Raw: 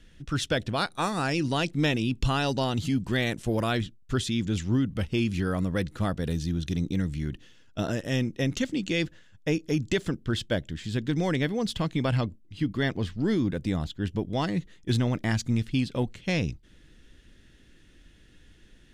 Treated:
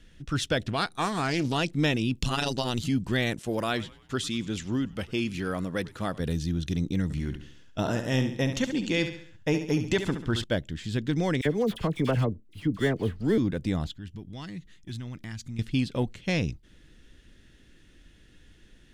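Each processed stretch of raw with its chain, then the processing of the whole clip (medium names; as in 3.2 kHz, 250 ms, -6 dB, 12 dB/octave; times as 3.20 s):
0.67–1.58 s: band-stop 570 Hz, Q 5.3 + loudspeaker Doppler distortion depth 0.28 ms
2.16–2.84 s: treble shelf 3 kHz +8.5 dB + AM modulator 120 Hz, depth 70%
3.39–6.20 s: high-pass 250 Hz 6 dB/octave + frequency-shifting echo 98 ms, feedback 50%, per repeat -96 Hz, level -20.5 dB
7.03–10.44 s: dynamic bell 920 Hz, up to +8 dB, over -53 dBFS + feedback delay 69 ms, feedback 43%, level -9 dB
11.41–13.38 s: median filter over 9 samples + peaking EQ 440 Hz +6.5 dB 0.43 oct + phase dispersion lows, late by 45 ms, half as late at 1.5 kHz
13.94–15.59 s: peaking EQ 580 Hz -11 dB 1.6 oct + compression 2:1, threshold -42 dBFS
whole clip: none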